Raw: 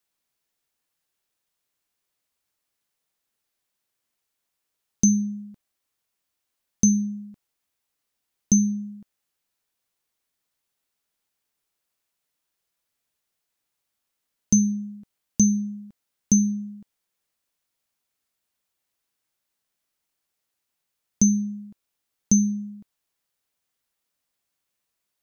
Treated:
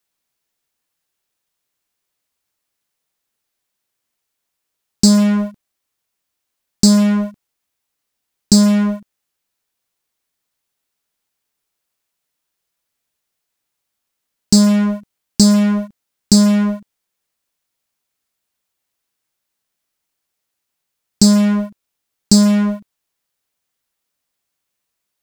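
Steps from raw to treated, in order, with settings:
in parallel at −4.5 dB: fuzz pedal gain 40 dB, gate −40 dBFS
on the sum: highs frequency-modulated by the lows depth 0.23 ms
level +3.5 dB

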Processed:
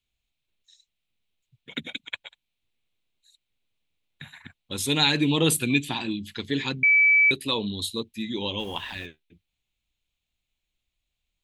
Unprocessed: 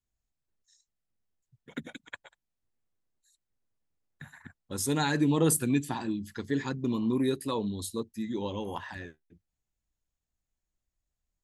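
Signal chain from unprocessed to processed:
flat-topped bell 3,000 Hz +14 dB 1.1 octaves
0:06.83–0:07.31: beep over 2,300 Hz −16.5 dBFS
0:08.58–0:09.05: background noise pink −56 dBFS
level +2 dB

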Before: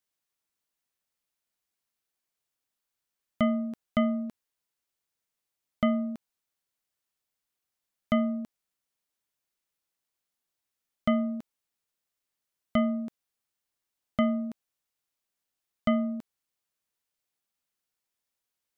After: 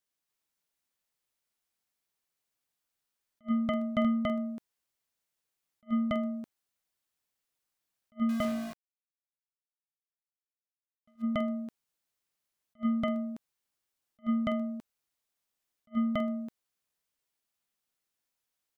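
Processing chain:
loudspeakers that aren't time-aligned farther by 27 metres −9 dB, 97 metres −2 dB
0:08.29–0:11.22: centre clipping without the shift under −35 dBFS
level that may rise only so fast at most 520 dB per second
level −2 dB

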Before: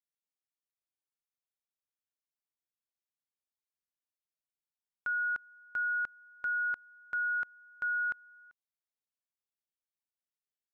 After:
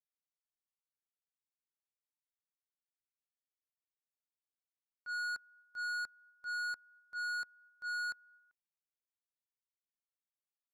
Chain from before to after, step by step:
transient designer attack −10 dB, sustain +6 dB
soft clipping −39.5 dBFS, distortion −9 dB
expander for the loud parts 2.5 to 1, over −53 dBFS
level +3.5 dB

